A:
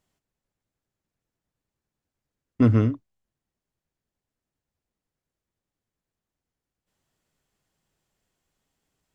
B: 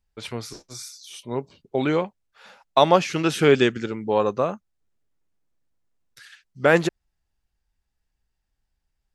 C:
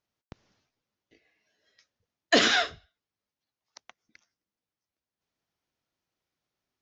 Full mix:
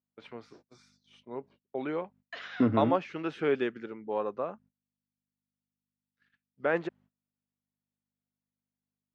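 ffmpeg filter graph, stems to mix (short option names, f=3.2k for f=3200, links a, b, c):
-filter_complex "[0:a]alimiter=limit=-14.5dB:level=0:latency=1:release=112,volume=1dB[a];[1:a]aeval=exprs='val(0)+0.00501*(sin(2*PI*50*n/s)+sin(2*PI*2*50*n/s)/2+sin(2*PI*3*50*n/s)/3+sin(2*PI*4*50*n/s)/4+sin(2*PI*5*50*n/s)/5)':c=same,volume=-10.5dB[b];[2:a]highpass=1.1k,volume=-15.5dB[c];[a][b][c]amix=inputs=3:normalize=0,agate=range=-23dB:threshold=-52dB:ratio=16:detection=peak,highpass=220,lowpass=2.2k"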